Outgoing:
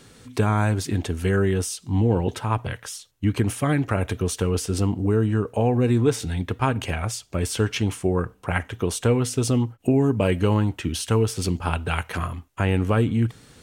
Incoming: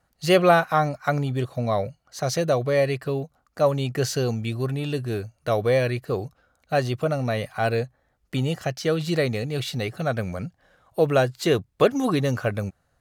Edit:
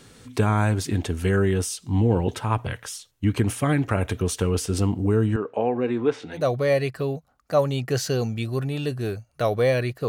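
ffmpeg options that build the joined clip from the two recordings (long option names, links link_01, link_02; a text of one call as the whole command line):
ffmpeg -i cue0.wav -i cue1.wav -filter_complex "[0:a]asettb=1/sr,asplit=3[link_01][link_02][link_03];[link_01]atrim=end=5.364[link_04];[link_02]atrim=start=5.36:end=6.47,asetpts=PTS-STARTPTS,afade=type=in:duration=0.004:curve=qsin,afade=type=out:start_time=1.106:duration=0.004:curve=qsin,highpass=290,lowpass=2700[link_05];[link_03]atrim=start=6.466[link_06];[link_04][link_05]acrossfade=duration=0.004:curve1=hsin:curve2=qsin[link_07];[link_07][link_06]acrossfade=duration=0.004:curve1=qsin:curve2=hsin,apad=whole_dur=10.08,atrim=end=10.08,atrim=end=6.47,asetpts=PTS-STARTPTS[link_08];[1:a]atrim=start=2.38:end=6.15,asetpts=PTS-STARTPTS[link_09];[link_08][link_09]acrossfade=duration=0.16:curve1=tri:curve2=tri" out.wav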